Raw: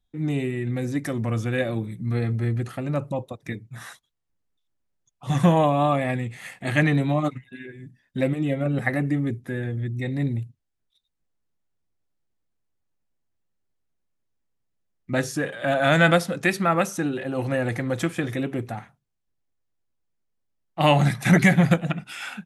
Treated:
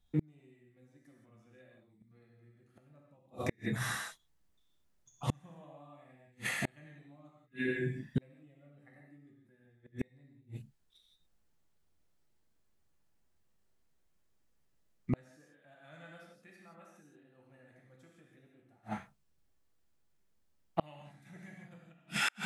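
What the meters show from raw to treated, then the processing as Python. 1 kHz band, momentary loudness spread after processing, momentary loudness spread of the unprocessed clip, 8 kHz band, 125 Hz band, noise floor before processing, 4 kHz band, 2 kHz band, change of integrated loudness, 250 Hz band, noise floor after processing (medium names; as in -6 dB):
-20.0 dB, 21 LU, 17 LU, -10.5 dB, -19.5 dB, -77 dBFS, -12.5 dB, -15.5 dB, -15.5 dB, -19.0 dB, -72 dBFS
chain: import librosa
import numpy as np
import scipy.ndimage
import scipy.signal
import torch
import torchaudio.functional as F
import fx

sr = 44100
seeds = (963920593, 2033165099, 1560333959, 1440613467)

y = fx.rev_gated(x, sr, seeds[0], gate_ms=200, shape='flat', drr_db=-2.0)
y = fx.gate_flip(y, sr, shuts_db=-20.0, range_db=-40)
y = F.gain(torch.from_numpy(y), 1.0).numpy()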